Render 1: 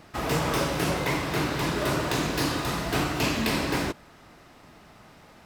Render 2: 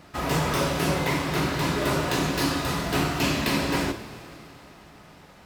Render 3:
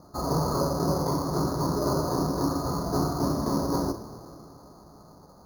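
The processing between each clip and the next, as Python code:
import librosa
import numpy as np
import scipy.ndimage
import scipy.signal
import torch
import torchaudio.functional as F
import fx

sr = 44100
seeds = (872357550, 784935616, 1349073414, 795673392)

y1 = fx.rev_double_slope(x, sr, seeds[0], early_s=0.29, late_s=3.4, knee_db=-17, drr_db=4.5)
y2 = scipy.signal.sosfilt(scipy.signal.ellip(4, 1.0, 80, 1200.0, 'lowpass', fs=sr, output='sos'), y1)
y2 = np.repeat(scipy.signal.resample_poly(y2, 1, 8), 8)[:len(y2)]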